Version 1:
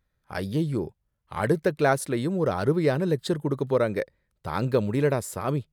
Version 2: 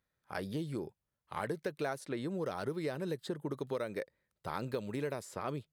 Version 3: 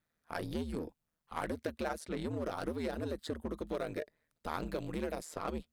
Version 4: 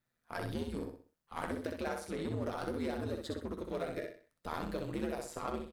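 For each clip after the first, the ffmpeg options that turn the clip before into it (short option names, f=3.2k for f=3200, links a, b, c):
-filter_complex "[0:a]highpass=f=200:p=1,acrossover=split=2100|6400[a][b][c];[a]acompressor=threshold=-30dB:ratio=4[d];[b]acompressor=threshold=-46dB:ratio=4[e];[c]acompressor=threshold=-55dB:ratio=4[f];[d][e][f]amix=inputs=3:normalize=0,volume=-4.5dB"
-filter_complex "[0:a]asplit=2[a][b];[b]aeval=exprs='0.0126*(abs(mod(val(0)/0.0126+3,4)-2)-1)':c=same,volume=-9.5dB[c];[a][c]amix=inputs=2:normalize=0,aeval=exprs='val(0)*sin(2*PI*79*n/s)':c=same,volume=2dB"
-filter_complex "[0:a]flanger=delay=8:depth=4:regen=57:speed=0.37:shape=sinusoidal,asplit=2[a][b];[b]aecho=0:1:63|126|189|252:0.596|0.203|0.0689|0.0234[c];[a][c]amix=inputs=2:normalize=0,volume=2.5dB"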